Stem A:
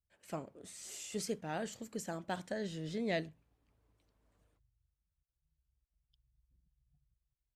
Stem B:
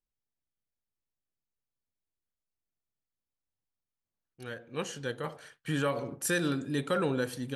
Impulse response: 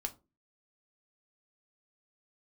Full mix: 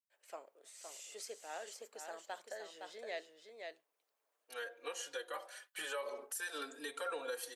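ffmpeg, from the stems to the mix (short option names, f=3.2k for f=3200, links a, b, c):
-filter_complex "[0:a]volume=-5dB,asplit=2[a][b];[b]volume=-6dB[c];[1:a]highshelf=f=7.9k:g=8.5,asplit=2[d][e];[e]adelay=3.8,afreqshift=0.42[f];[d][f]amix=inputs=2:normalize=1,adelay=100,volume=2.5dB[g];[c]aecho=0:1:514:1[h];[a][g][h]amix=inputs=3:normalize=0,highpass=f=480:w=0.5412,highpass=f=480:w=1.3066,alimiter=level_in=7.5dB:limit=-24dB:level=0:latency=1:release=268,volume=-7.5dB"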